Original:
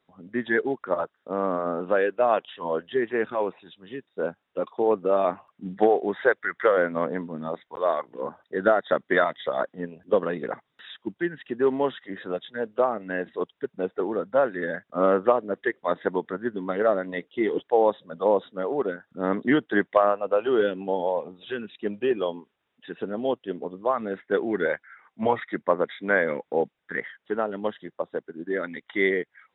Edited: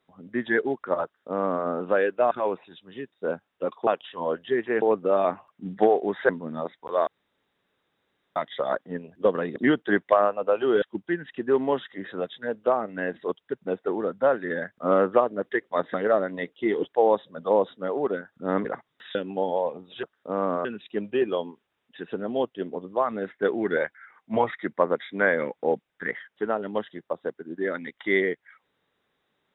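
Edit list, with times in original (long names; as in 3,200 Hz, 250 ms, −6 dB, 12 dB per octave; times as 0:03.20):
0:01.04–0:01.66: duplicate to 0:21.54
0:02.31–0:03.26: move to 0:04.82
0:06.29–0:07.17: remove
0:07.95–0:09.24: fill with room tone
0:10.44–0:10.94: swap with 0:19.40–0:20.66
0:16.06–0:16.69: remove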